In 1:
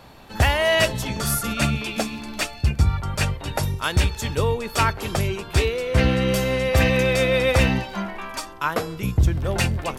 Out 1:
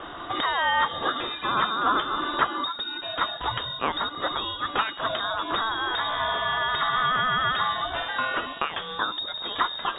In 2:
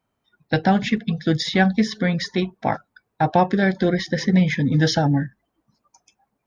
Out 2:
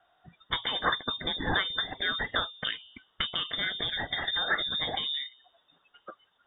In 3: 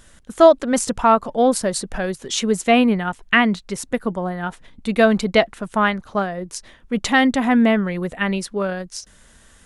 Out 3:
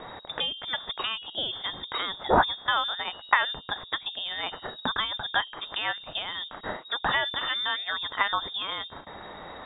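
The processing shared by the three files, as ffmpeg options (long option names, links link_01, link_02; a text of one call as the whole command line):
ffmpeg -i in.wav -filter_complex "[0:a]acrossover=split=2500[link_01][link_02];[link_02]acompressor=threshold=-41dB:ratio=4:attack=1:release=60[link_03];[link_01][link_03]amix=inputs=2:normalize=0,bandreject=frequency=64.1:width_type=h:width=4,bandreject=frequency=128.2:width_type=h:width=4,bandreject=frequency=192.3:width_type=h:width=4,bandreject=frequency=256.4:width_type=h:width=4,bandreject=frequency=320.5:width_type=h:width=4,bandreject=frequency=384.6:width_type=h:width=4,bandreject=frequency=448.7:width_type=h:width=4,bandreject=frequency=512.8:width_type=h:width=4,bandreject=frequency=576.9:width_type=h:width=4,bandreject=frequency=641:width_type=h:width=4,bandreject=frequency=705.1:width_type=h:width=4,bandreject=frequency=769.2:width_type=h:width=4,bandreject=frequency=833.3:width_type=h:width=4,bandreject=frequency=897.4:width_type=h:width=4,bandreject=frequency=961.5:width_type=h:width=4,bandreject=frequency=1025.6:width_type=h:width=4,bandreject=frequency=1089.7:width_type=h:width=4,acompressor=threshold=-32dB:ratio=4,aexciter=amount=11.1:drive=9:freq=2300,lowpass=frequency=3200:width_type=q:width=0.5098,lowpass=frequency=3200:width_type=q:width=0.6013,lowpass=frequency=3200:width_type=q:width=0.9,lowpass=frequency=3200:width_type=q:width=2.563,afreqshift=-3800,volume=-1dB" out.wav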